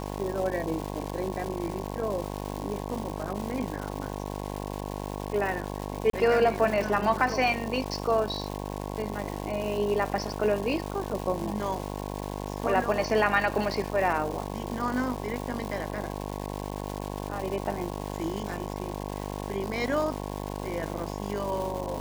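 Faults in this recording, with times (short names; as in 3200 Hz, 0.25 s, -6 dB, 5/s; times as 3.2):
buzz 50 Hz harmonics 22 -35 dBFS
crackle 510/s -33 dBFS
6.1–6.13 gap 33 ms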